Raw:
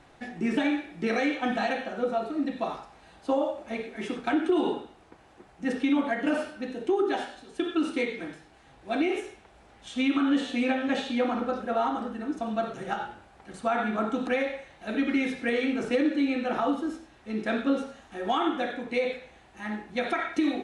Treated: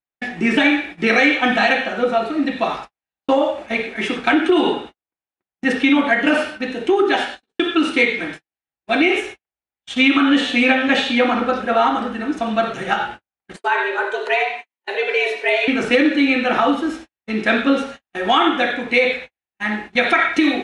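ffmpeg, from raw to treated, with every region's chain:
-filter_complex "[0:a]asettb=1/sr,asplit=3[a][b][c];[a]atrim=end=13.564[d];[b]atrim=start=13.56:end=15.68,asetpts=PTS-STARTPTS,afade=t=in:d=0.004:c=qsin,afade=t=out:st=2.116:d=0.004:c=qsin,flanger=delay=3.8:depth=1.8:regen=74:speed=1.1:shape=sinusoidal,afreqshift=180[e];[c]atrim=start=15.676[f];[d][e]acrossfade=d=0.004:c1=hsin:c2=qsin[g];[g][f]acrossfade=d=0.004:c1=qsin:c2=hsin,acontrast=29,agate=range=-54dB:threshold=-37dB:ratio=16:detection=peak,equalizer=f=2.4k:w=0.73:g=9,volume=3.5dB"

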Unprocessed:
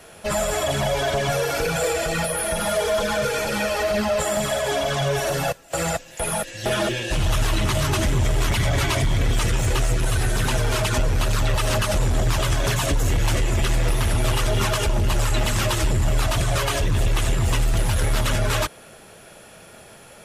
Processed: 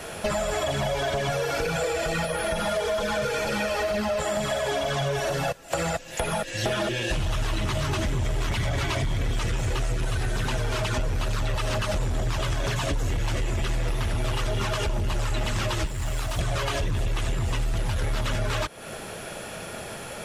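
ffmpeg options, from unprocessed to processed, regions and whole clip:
-filter_complex "[0:a]asettb=1/sr,asplit=3[a][b][c];[a]atrim=end=15.864[d];[b]atrim=start=15.86:end=16.39,asetpts=PTS-STARTPTS,afade=t=in:d=0.004:c=qsin,afade=t=out:st=0.526:d=0.004:c=qsin,acrossover=split=110|870|5800[e][f][g][h];[e]acompressor=threshold=-31dB:ratio=3[i];[f]acompressor=threshold=-41dB:ratio=3[j];[g]acompressor=threshold=-40dB:ratio=3[k];[h]acompressor=threshold=-40dB:ratio=3[l];[i][j][k][l]amix=inputs=4:normalize=0,acrusher=bits=6:mode=log:mix=0:aa=0.000001[m];[c]atrim=start=16.386[n];[d][m]acrossfade=d=0.004:c1=hsin:c2=qsin[o];[o][n]acrossfade=d=0.004:c1=qsin:c2=hsin,acrossover=split=7200[p][q];[q]acompressor=threshold=-39dB:ratio=4:attack=1:release=60[r];[p][r]amix=inputs=2:normalize=0,highshelf=f=8.1k:g=-4,acompressor=threshold=-34dB:ratio=6,volume=9dB"

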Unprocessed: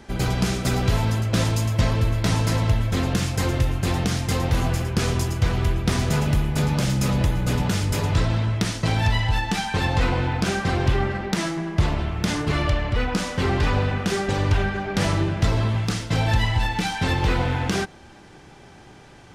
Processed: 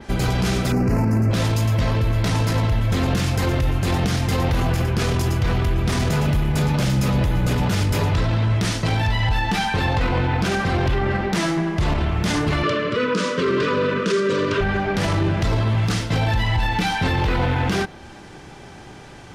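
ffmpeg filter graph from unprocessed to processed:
-filter_complex "[0:a]asettb=1/sr,asplit=3[a][b][c];[a]atrim=end=0.724[d];[b]atrim=start=0.72:end=1.31,asetpts=PTS-STARTPTS,afade=t=in:d=0.004:c=qsin,afade=t=out:st=0.586:d=0.004:c=qsin,asuperstop=centerf=3500:order=4:qfactor=1.3,equalizer=f=240:t=o:w=1.6:g=12.5[e];[c]atrim=start=1.306[f];[d][e]acrossfade=d=0.004:c1=hsin:c2=qsin[g];[g][f]acrossfade=d=0.004:c1=qsin:c2=hsin,asettb=1/sr,asplit=3[h][i][j];[h]atrim=end=12.634[k];[i]atrim=start=12.63:end=14.61,asetpts=PTS-STARTPTS,afade=t=in:d=0.004:c=qsin,afade=t=out:st=1.976:d=0.004:c=qsin,asuperstop=centerf=790:order=20:qfactor=3.1,highpass=f=160:w=0.5412,highpass=f=160:w=1.3066,equalizer=f=440:t=q:w=4:g=10,equalizer=f=700:t=q:w=4:g=-5,equalizer=f=1.3k:t=q:w=4:g=4,equalizer=f=2k:t=q:w=4:g=-3,lowpass=f=8.9k:w=0.5412,lowpass=f=8.9k:w=1.3066[l];[j]atrim=start=14.606[m];[k][l]acrossfade=d=0.004:c1=hsin:c2=qsin[n];[n][m]acrossfade=d=0.004:c1=qsin:c2=hsin,adynamicequalizer=threshold=0.00355:dfrequency=7800:dqfactor=1:tfrequency=7800:tqfactor=1:attack=5:release=100:ratio=0.375:range=3.5:mode=cutabove:tftype=bell,alimiter=limit=-18.5dB:level=0:latency=1:release=17,volume=6dB"

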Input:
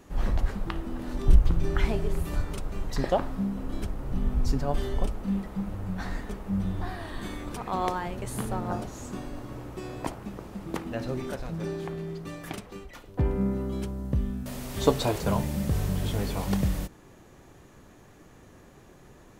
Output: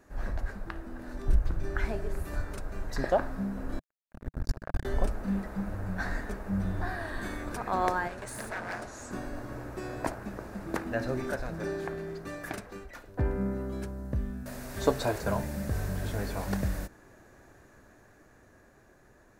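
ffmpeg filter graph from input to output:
-filter_complex "[0:a]asettb=1/sr,asplit=3[a][b][c];[a]atrim=end=3.794[d];[b]atrim=start=3.79:end=4.85,asetpts=PTS-STARTPTS,afade=t=in:d=0.004:c=qsin,afade=t=out:st=1.056:d=0.004:c=qsin,asubboost=boost=7.5:cutoff=150,acompressor=threshold=-25dB:ratio=2:attack=3.2:release=140:knee=1:detection=peak,acrusher=bits=2:mix=0:aa=0.5[e];[c]atrim=start=4.846[f];[d][e]acrossfade=d=0.004:c1=hsin:c2=qsin[g];[g][f]acrossfade=d=0.004:c1=qsin:c2=hsin,asettb=1/sr,asplit=3[h][i][j];[h]atrim=end=8.084[k];[i]atrim=start=8.08:end=9.11,asetpts=PTS-STARTPTS,afade=t=in:d=0.004:c=qsin,afade=t=out:st=1.026:d=0.004:c=qsin,lowpass=f=11k:w=0.5412,lowpass=f=11k:w=1.3066,aeval=exprs='0.0335*(abs(mod(val(0)/0.0335+3,4)-2)-1)':c=same,lowshelf=f=430:g=-8[l];[j]atrim=start=9.106[m];[k][l]acrossfade=d=0.004:c1=hsin:c2=qsin[n];[n][m]acrossfade=d=0.004:c1=qsin:c2=hsin,equalizer=f=160:t=o:w=0.33:g=-7,equalizer=f=630:t=o:w=0.33:g=5,equalizer=f=1.6k:t=o:w=0.33:g=10,equalizer=f=3.15k:t=o:w=0.33:g=-8,dynaudnorm=f=240:g=17:m=7.5dB,volume=-7.5dB"

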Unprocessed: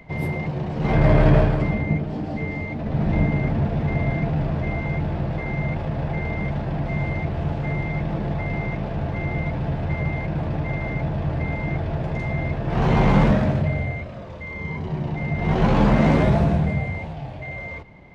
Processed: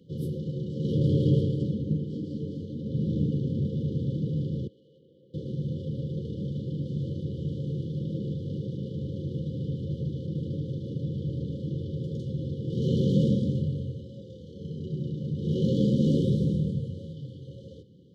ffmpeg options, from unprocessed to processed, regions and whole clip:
-filter_complex "[0:a]asettb=1/sr,asplit=3[a][b][c];[a]atrim=end=4.674[d];[b]atrim=start=4.67:end=5.34,asetpts=PTS-STARTPTS,afade=t=in:d=0.004:c=qsin,afade=t=out:st=0.666:d=0.004:c=qsin,asoftclip=type=hard:threshold=-24.5dB,asplit=3[e][f][g];[e]bandpass=f=730:t=q:w=8,volume=0dB[h];[f]bandpass=f=1.09k:t=q:w=8,volume=-6dB[i];[g]bandpass=f=2.44k:t=q:w=8,volume=-9dB[j];[h][i][j]amix=inputs=3:normalize=0[k];[c]atrim=start=5.336[l];[d][k]acrossfade=d=0.004:c1=hsin:c2=qsin[m];[m][l]acrossfade=d=0.004:c1=qsin:c2=hsin,highpass=f=97:w=0.5412,highpass=f=97:w=1.3066,afftfilt=real='re*(1-between(b*sr/4096,550,2900))':imag='im*(1-between(b*sr/4096,550,2900))':win_size=4096:overlap=0.75,volume=-5dB"

